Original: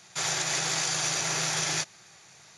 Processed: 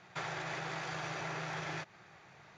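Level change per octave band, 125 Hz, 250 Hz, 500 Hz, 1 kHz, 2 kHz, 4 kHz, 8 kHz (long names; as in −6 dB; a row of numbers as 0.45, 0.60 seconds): −5.5, −5.5, −5.5, −5.5, −8.0, −17.5, −26.5 decibels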